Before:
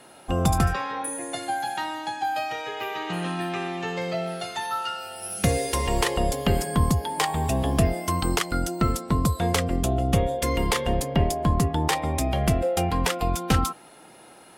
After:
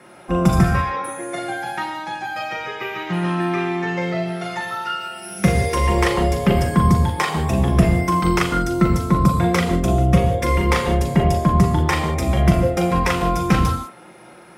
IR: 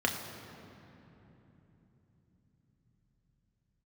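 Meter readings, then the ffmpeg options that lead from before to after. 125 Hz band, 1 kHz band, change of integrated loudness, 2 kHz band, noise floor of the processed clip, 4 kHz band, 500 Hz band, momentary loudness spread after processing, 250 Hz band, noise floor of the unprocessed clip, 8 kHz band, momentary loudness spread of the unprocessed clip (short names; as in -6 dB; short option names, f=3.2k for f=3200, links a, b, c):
+7.0 dB, +5.0 dB, +6.0 dB, +6.5 dB, -44 dBFS, +1.0 dB, +5.0 dB, 10 LU, +8.0 dB, -49 dBFS, -1.5 dB, 7 LU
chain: -filter_complex "[1:a]atrim=start_sample=2205,afade=t=out:st=0.2:d=0.01,atrim=end_sample=9261,asetrate=32193,aresample=44100[a];[0:a][a]afir=irnorm=-1:irlink=0,volume=-5dB"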